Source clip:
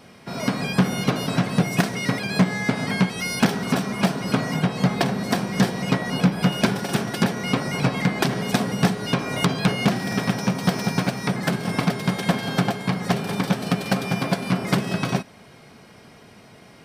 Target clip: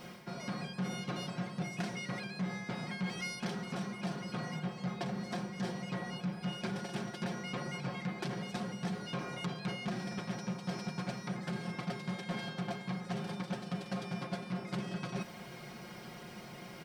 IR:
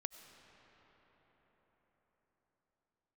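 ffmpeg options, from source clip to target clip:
-af "lowpass=7800,acrusher=bits=9:mix=0:aa=0.000001,areverse,acompressor=threshold=0.0126:ratio=4,areverse,aecho=1:1:5.6:0.65,asoftclip=type=tanh:threshold=0.0562,volume=0.794"

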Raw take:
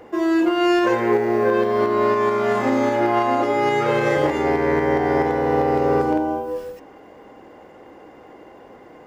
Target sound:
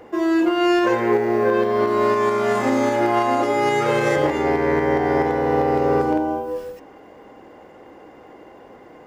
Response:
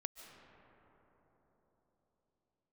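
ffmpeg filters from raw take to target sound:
-filter_complex "[0:a]asettb=1/sr,asplit=3[s0][s1][s2];[s0]atrim=end=1.874[s3];[s1]atrim=start=1.87:end=4.16,asetpts=PTS-STARTPTS,afade=t=in:d=0.004:c=qsin,afade=t=out:st=2.286:d=0.004:c=qsin,equalizer=f=9400:t=o:w=1.4:g=8[s4];[s2]atrim=start=4.156[s5];[s3][s4]acrossfade=d=0.004:c1=hsin:c2=qsin[s6];[s6][s5]acrossfade=d=0.004:c1=qsin:c2=hsin"

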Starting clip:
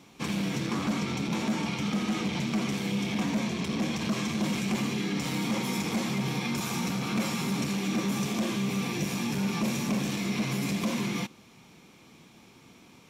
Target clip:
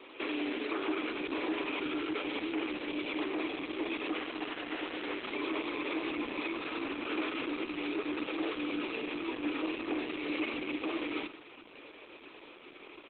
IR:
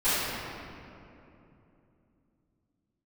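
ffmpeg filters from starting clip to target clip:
-filter_complex "[0:a]alimiter=level_in=2.24:limit=0.0631:level=0:latency=1:release=97,volume=0.447,acontrast=36,crystalizer=i=3.5:c=0,asplit=3[s0][s1][s2];[s0]afade=t=out:st=4.19:d=0.02[s3];[s1]aeval=exprs='(mod(18.8*val(0)+1,2)-1)/18.8':c=same,afade=t=in:st=4.19:d=0.02,afade=t=out:st=5.22:d=0.02[s4];[s2]afade=t=in:st=5.22:d=0.02[s5];[s3][s4][s5]amix=inputs=3:normalize=0,highpass=f=190:t=q:w=0.5412,highpass=f=190:t=q:w=1.307,lowpass=f=3000:t=q:w=0.5176,lowpass=f=3000:t=q:w=0.7071,lowpass=f=3000:t=q:w=1.932,afreqshift=99,aecho=1:1:105|210:0.188|0.0433" -ar 48000 -c:a libopus -b:a 8k

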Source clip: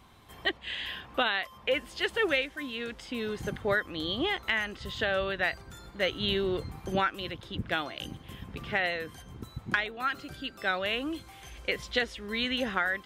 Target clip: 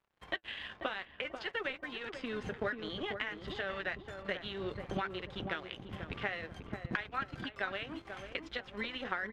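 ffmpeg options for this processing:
-filter_complex "[0:a]acrossover=split=250[s0][s1];[s1]crystalizer=i=6:c=0[s2];[s0][s2]amix=inputs=2:normalize=0,bandreject=f=334.9:t=h:w=4,bandreject=f=669.8:t=h:w=4,bandreject=f=1004.7:t=h:w=4,bandreject=f=1339.6:t=h:w=4,bandreject=f=1674.5:t=h:w=4,bandreject=f=2009.4:t=h:w=4,bandreject=f=2344.3:t=h:w=4,bandreject=f=2679.2:t=h:w=4,bandreject=f=3014.1:t=h:w=4,bandreject=f=3349:t=h:w=4,bandreject=f=3683.9:t=h:w=4,acompressor=threshold=0.02:ratio=4,aeval=exprs='sgn(val(0))*max(abs(val(0))-0.00668,0)':c=same,lowpass=1900,flanger=delay=5.2:depth=5.4:regen=-64:speed=0.41:shape=sinusoidal,atempo=1.4,asplit=2[s3][s4];[s4]adelay=489,lowpass=f=810:p=1,volume=0.562,asplit=2[s5][s6];[s6]adelay=489,lowpass=f=810:p=1,volume=0.43,asplit=2[s7][s8];[s8]adelay=489,lowpass=f=810:p=1,volume=0.43,asplit=2[s9][s10];[s10]adelay=489,lowpass=f=810:p=1,volume=0.43,asplit=2[s11][s12];[s12]adelay=489,lowpass=f=810:p=1,volume=0.43[s13];[s3][s5][s7][s9][s11][s13]amix=inputs=6:normalize=0,volume=2.37"

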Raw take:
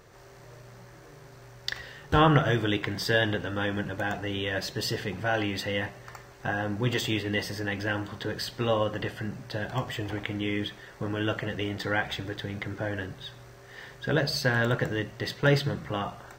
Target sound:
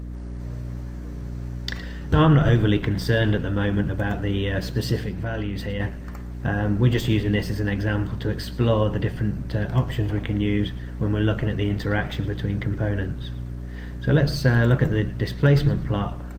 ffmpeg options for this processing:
-filter_complex "[0:a]equalizer=f=110:w=0.33:g=11,bandreject=f=780:w=17,asettb=1/sr,asplit=3[s0][s1][s2];[s0]atrim=end=4.974[s3];[s1]atrim=start=4.97:end=5.8,asetpts=PTS-STARTPTS,afade=t=in:d=0.004:c=qsin,afade=t=out:st=0.826:d=0.004:c=qsin,acompressor=threshold=0.0447:ratio=3[s4];[s2]atrim=start=5.796[s5];[s3][s4]acrossfade=d=0.004:c1=hsin:c2=qsin[s6];[s6][s5]acrossfade=d=0.004:c1=qsin:c2=hsin,asettb=1/sr,asplit=3[s7][s8][s9];[s7]atrim=end=7.794[s10];[s8]atrim=start=7.79:end=8.35,asetpts=PTS-STARTPTS,afade=t=in:d=0.004:c=qsin,afade=t=out:st=0.556:d=0.004:c=qsin,bandreject=f=219.7:t=h:w=4,bandreject=f=439.4:t=h:w=4[s11];[s9]atrim=start=8.346[s12];[s10][s11]acrossfade=d=0.004:c1=hsin:c2=qsin[s13];[s13][s12]acrossfade=d=0.004:c1=qsin:c2=hsin,aeval=exprs='val(0)+0.0251*(sin(2*PI*60*n/s)+sin(2*PI*2*60*n/s)/2+sin(2*PI*3*60*n/s)/3+sin(2*PI*4*60*n/s)/4+sin(2*PI*5*60*n/s)/5)':c=same,asplit=4[s14][s15][s16][s17];[s15]adelay=112,afreqshift=-120,volume=0.141[s18];[s16]adelay=224,afreqshift=-240,volume=0.0495[s19];[s17]adelay=336,afreqshift=-360,volume=0.0174[s20];[s14][s18][s19][s20]amix=inputs=4:normalize=0,alimiter=level_in=2.37:limit=0.891:release=50:level=0:latency=1,volume=0.447" -ar 48000 -c:a libopus -b:a 32k

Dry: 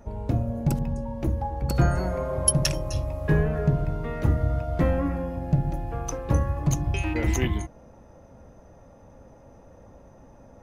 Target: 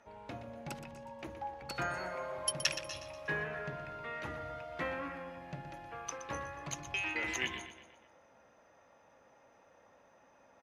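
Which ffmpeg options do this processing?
-af "bandpass=f=2400:t=q:w=0.96:csg=0,aecho=1:1:121|242|363|484|605:0.282|0.135|0.0649|0.0312|0.015"

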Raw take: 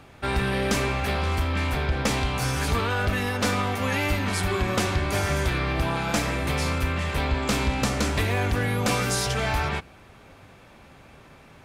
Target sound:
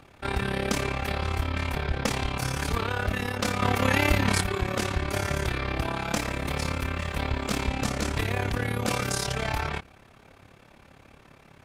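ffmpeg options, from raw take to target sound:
-filter_complex "[0:a]asettb=1/sr,asplit=3[s0][s1][s2];[s0]atrim=end=3.624[s3];[s1]atrim=start=3.62:end=4.42,asetpts=PTS-STARTPTS,afade=t=in:d=0.004:c=qsin,afade=t=out:st=0.796:d=0.004:c=qsin,acontrast=49[s4];[s2]atrim=start=4.416[s5];[s3][s4]acrossfade=d=0.004:c1=hsin:c2=qsin[s6];[s6][s5]acrossfade=d=0.004:c1=qsin:c2=hsin,tremolo=f=35:d=0.788,asettb=1/sr,asplit=3[s7][s8][s9];[s7]atrim=end=6.164[s10];[s8]atrim=start=6.16:end=7.69,asetpts=PTS-STARTPTS,afade=t=in:d=0.004:c=qsin,afade=t=out:st=1.526:d=0.004:c=qsin,aeval=exprs='sgn(val(0))*max(abs(val(0))-0.002,0)':c=same[s11];[s9]atrim=start=7.686[s12];[s10][s11]acrossfade=d=0.004:c1=hsin:c2=qsin[s13];[s13][s12]acrossfade=d=0.004:c1=qsin:c2=hsin"

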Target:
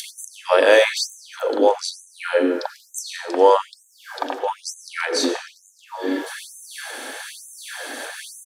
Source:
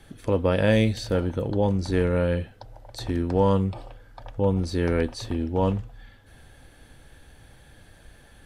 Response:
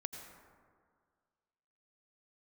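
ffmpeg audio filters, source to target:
-filter_complex "[0:a]highshelf=f=5400:g=9.5,acompressor=mode=upward:threshold=0.0708:ratio=2.5,acrossover=split=350|3100[s0][s1][s2];[s1]adelay=40[s3];[s0]adelay=490[s4];[s4][s3][s2]amix=inputs=3:normalize=0,asplit=2[s5][s6];[1:a]atrim=start_sample=2205,lowpass=7700[s7];[s6][s7]afir=irnorm=-1:irlink=0,volume=1.78[s8];[s5][s8]amix=inputs=2:normalize=0,afftfilt=real='re*gte(b*sr/1024,220*pow(6200/220,0.5+0.5*sin(2*PI*1.1*pts/sr)))':imag='im*gte(b*sr/1024,220*pow(6200/220,0.5+0.5*sin(2*PI*1.1*pts/sr)))':win_size=1024:overlap=0.75,volume=1.58"

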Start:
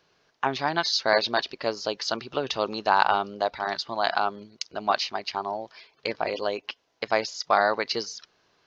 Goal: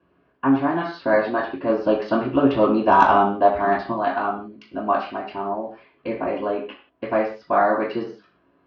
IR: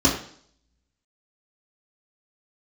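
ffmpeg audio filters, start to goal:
-filter_complex "[0:a]lowpass=f=2500:w=0.5412,lowpass=f=2500:w=1.3066,asettb=1/sr,asplit=3[s0][s1][s2];[s0]atrim=end=1.694[s3];[s1]atrim=start=1.69:end=3.92,asetpts=PTS-STARTPTS,afade=t=in:d=0.004:c=qsin,afade=t=out:st=2.226:d=0.004:c=qsin,acontrast=34[s4];[s2]atrim=start=3.916[s5];[s3][s4]acrossfade=d=0.004:c1=hsin:c2=qsin[s6];[s6][s5]acrossfade=d=0.004:c1=qsin:c2=hsin[s7];[1:a]atrim=start_sample=2205,afade=t=out:st=0.24:d=0.01,atrim=end_sample=11025[s8];[s7][s8]afir=irnorm=-1:irlink=0,volume=0.168"

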